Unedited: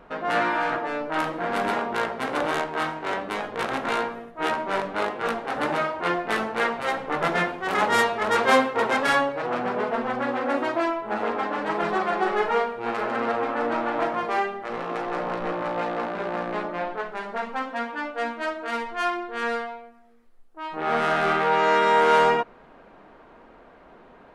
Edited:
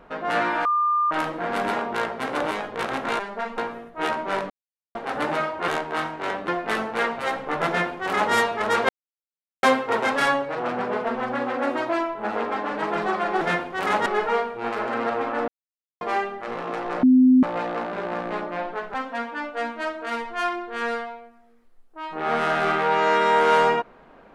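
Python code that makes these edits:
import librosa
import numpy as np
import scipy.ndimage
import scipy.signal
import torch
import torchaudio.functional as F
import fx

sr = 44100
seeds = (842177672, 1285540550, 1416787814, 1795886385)

y = fx.edit(x, sr, fx.bleep(start_s=0.65, length_s=0.46, hz=1200.0, db=-18.0),
    fx.move(start_s=2.51, length_s=0.8, to_s=6.09),
    fx.silence(start_s=4.91, length_s=0.45),
    fx.duplicate(start_s=7.29, length_s=0.65, to_s=12.28),
    fx.insert_silence(at_s=8.5, length_s=0.74),
    fx.silence(start_s=13.7, length_s=0.53),
    fx.bleep(start_s=15.25, length_s=0.4, hz=256.0, db=-11.0),
    fx.move(start_s=17.16, length_s=0.39, to_s=3.99), tone=tone)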